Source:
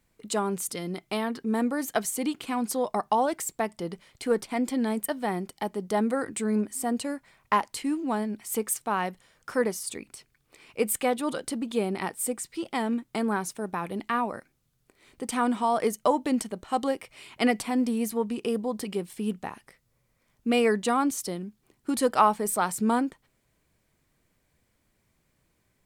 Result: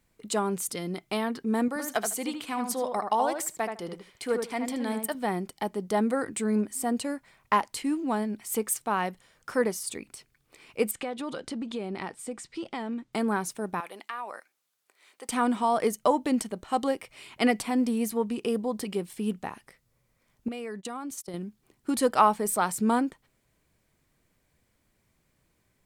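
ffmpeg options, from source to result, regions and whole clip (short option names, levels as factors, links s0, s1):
-filter_complex "[0:a]asettb=1/sr,asplit=3[s0][s1][s2];[s0]atrim=end=1.684[s3];[s1]atrim=start=1.68:end=5.15,asetpts=PTS-STARTPTS,afade=t=in:d=0.004:c=qsin,afade=t=out:st=3.466:d=0.004:c=qsin,lowshelf=f=420:g=-7.5,asplit=2[s4][s5];[s5]adelay=77,lowpass=f=2300:p=1,volume=0.562,asplit=2[s6][s7];[s7]adelay=77,lowpass=f=2300:p=1,volume=0.17,asplit=2[s8][s9];[s9]adelay=77,lowpass=f=2300:p=1,volume=0.17[s10];[s4][s6][s8][s10]amix=inputs=4:normalize=0,atrim=end_sample=153027[s11];[s2]atrim=start=5.146[s12];[s3][s11]acrossfade=d=0.004:c1=hsin:c2=qsin[s13];[s13][s12]acrossfade=d=0.004:c1=qsin:c2=hsin,asettb=1/sr,asplit=3[s14][s15][s16];[s14]atrim=end=10.914[s17];[s15]atrim=start=10.91:end=13.13,asetpts=PTS-STARTPTS,afade=t=in:d=0.004:c=qsin,afade=t=out:st=2.216:d=0.004:c=qsin,acompressor=threshold=0.0316:ratio=4:attack=3.2:release=140:knee=1:detection=peak,lowpass=6200[s18];[s16]atrim=start=13.126[s19];[s17][s18]acrossfade=d=0.004:c1=hsin:c2=qsin[s20];[s20][s19]acrossfade=d=0.004:c1=qsin:c2=hsin,asettb=1/sr,asplit=3[s21][s22][s23];[s21]atrim=end=13.804[s24];[s22]atrim=start=13.8:end=15.29,asetpts=PTS-STARTPTS,afade=t=in:d=0.004:c=qsin,afade=t=out:st=1.486:d=0.004:c=qsin,highpass=700,acompressor=threshold=0.0251:ratio=4:attack=3.2:release=140:knee=1:detection=peak[s25];[s23]atrim=start=15.286[s26];[s24][s25]acrossfade=d=0.004:c1=hsin:c2=qsin[s27];[s27][s26]acrossfade=d=0.004:c1=qsin:c2=hsin,asettb=1/sr,asplit=3[s28][s29][s30];[s28]atrim=end=20.484[s31];[s29]atrim=start=20.48:end=21.34,asetpts=PTS-STARTPTS,afade=t=in:d=0.004:c=qsin,afade=t=out:st=0.856:d=0.004:c=qsin,agate=range=0.0708:threshold=0.02:ratio=16:release=100:detection=peak,acompressor=threshold=0.0224:ratio=8:attack=3.2:release=140:knee=1:detection=peak[s32];[s30]atrim=start=21.336[s33];[s31][s32]acrossfade=d=0.004:c1=hsin:c2=qsin[s34];[s34][s33]acrossfade=d=0.004:c1=qsin:c2=hsin"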